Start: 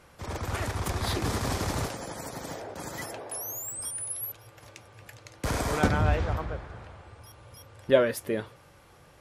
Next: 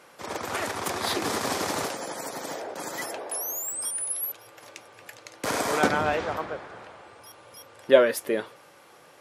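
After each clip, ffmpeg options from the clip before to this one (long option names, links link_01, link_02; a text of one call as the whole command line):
ffmpeg -i in.wav -af "highpass=290,volume=4.5dB" out.wav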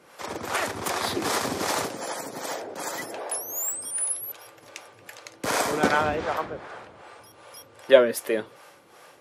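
ffmpeg -i in.wav -filter_complex "[0:a]acrossover=split=420[link_01][link_02];[link_01]aeval=exprs='val(0)*(1-0.7/2+0.7/2*cos(2*PI*2.6*n/s))':channel_layout=same[link_03];[link_02]aeval=exprs='val(0)*(1-0.7/2-0.7/2*cos(2*PI*2.6*n/s))':channel_layout=same[link_04];[link_03][link_04]amix=inputs=2:normalize=0,volume=4.5dB" out.wav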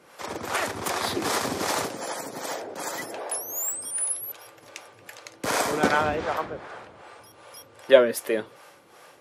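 ffmpeg -i in.wav -af anull out.wav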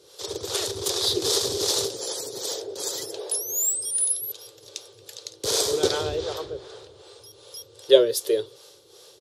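ffmpeg -i in.wav -af "firequalizer=gain_entry='entry(110,0);entry(220,-21);entry(400,6);entry(670,-12);entry(1100,-13);entry(2200,-15);entry(3600,8);entry(9000,2);entry(15000,-1)':delay=0.05:min_phase=1,volume=2.5dB" out.wav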